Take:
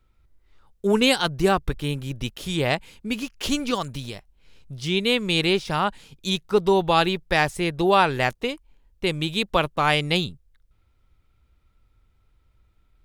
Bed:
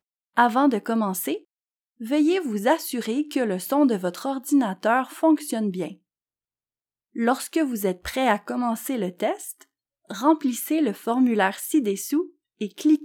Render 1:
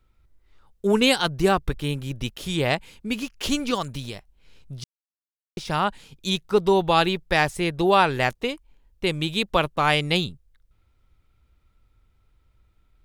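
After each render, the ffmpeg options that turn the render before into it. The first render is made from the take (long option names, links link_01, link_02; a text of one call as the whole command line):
ffmpeg -i in.wav -filter_complex "[0:a]asplit=3[link_01][link_02][link_03];[link_01]atrim=end=4.84,asetpts=PTS-STARTPTS,afade=type=out:start_time=4.836:duration=0.004:curve=hsin[link_04];[link_02]atrim=start=4.84:end=5.57,asetpts=PTS-STARTPTS,volume=0[link_05];[link_03]atrim=start=5.57,asetpts=PTS-STARTPTS,afade=type=in:duration=0.004:curve=hsin[link_06];[link_04][link_05][link_06]concat=n=3:v=0:a=1" out.wav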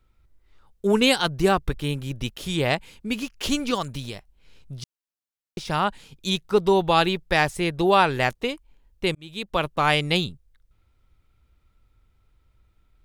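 ffmpeg -i in.wav -filter_complex "[0:a]asplit=2[link_01][link_02];[link_01]atrim=end=9.15,asetpts=PTS-STARTPTS,afade=type=out:start_time=9.146:duration=0.004:curve=hsin[link_03];[link_02]atrim=start=9.15,asetpts=PTS-STARTPTS,afade=type=in:duration=0.61[link_04];[link_03][link_04]concat=n=2:v=0:a=1" out.wav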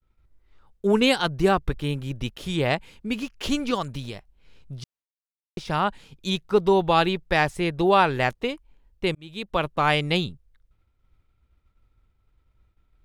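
ffmpeg -i in.wav -af "agate=range=-33dB:threshold=-57dB:ratio=3:detection=peak,highshelf=frequency=4500:gain=-7.5" out.wav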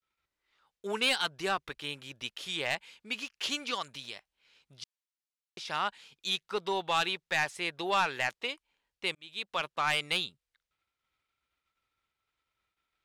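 ffmpeg -i in.wav -af "bandpass=frequency=3900:width_type=q:width=0.51:csg=0,asoftclip=type=tanh:threshold=-19dB" out.wav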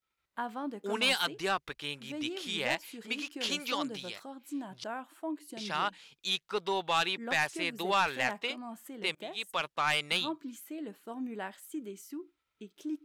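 ffmpeg -i in.wav -i bed.wav -filter_complex "[1:a]volume=-18.5dB[link_01];[0:a][link_01]amix=inputs=2:normalize=0" out.wav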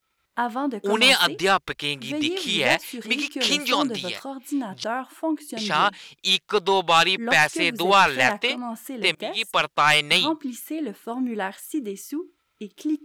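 ffmpeg -i in.wav -af "volume=11.5dB" out.wav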